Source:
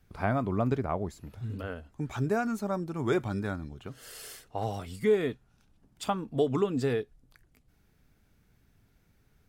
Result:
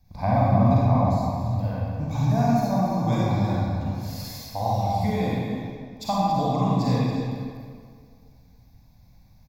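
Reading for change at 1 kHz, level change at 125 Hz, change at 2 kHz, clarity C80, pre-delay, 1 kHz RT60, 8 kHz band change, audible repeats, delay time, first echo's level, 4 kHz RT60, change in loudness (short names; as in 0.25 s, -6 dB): +11.5 dB, +12.5 dB, -0.5 dB, -2.0 dB, 36 ms, 2.0 s, +4.0 dB, 1, 0.283 s, -9.0 dB, 1.4 s, +7.5 dB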